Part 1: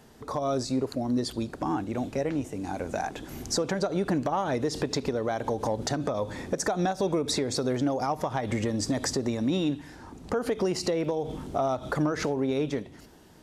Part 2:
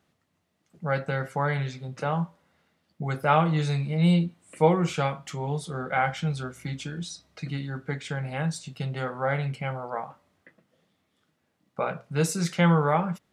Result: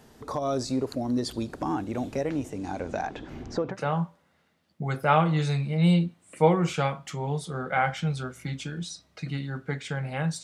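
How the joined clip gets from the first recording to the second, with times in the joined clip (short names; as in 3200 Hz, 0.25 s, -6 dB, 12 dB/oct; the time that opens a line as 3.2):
part 1
2.49–3.77 LPF 9700 Hz -> 1700 Hz
3.72 switch to part 2 from 1.92 s, crossfade 0.10 s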